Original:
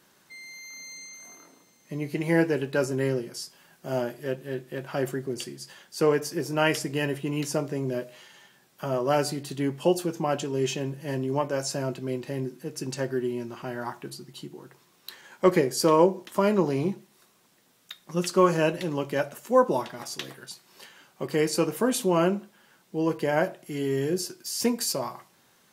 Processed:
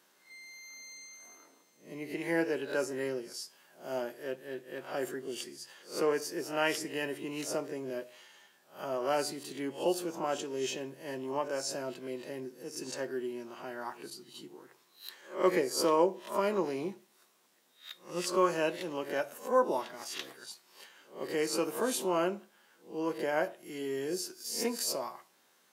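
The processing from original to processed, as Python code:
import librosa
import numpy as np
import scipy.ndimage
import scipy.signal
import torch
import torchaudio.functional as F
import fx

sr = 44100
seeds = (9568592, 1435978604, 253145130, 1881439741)

y = fx.spec_swells(x, sr, rise_s=0.34)
y = scipy.signal.sosfilt(scipy.signal.butter(2, 290.0, 'highpass', fs=sr, output='sos'), y)
y = y * librosa.db_to_amplitude(-6.5)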